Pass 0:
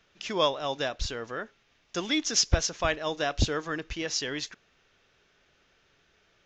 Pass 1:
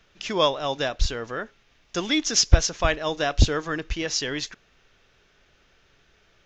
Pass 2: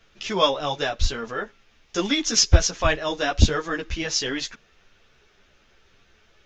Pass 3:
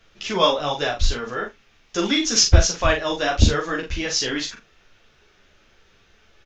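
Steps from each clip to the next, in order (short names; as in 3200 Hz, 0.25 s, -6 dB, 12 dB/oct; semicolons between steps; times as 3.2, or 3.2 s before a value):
low shelf 64 Hz +10.5 dB; gain +4 dB
ensemble effect; gain +4.5 dB
tapped delay 41/76 ms -5/-19.5 dB; gain +1 dB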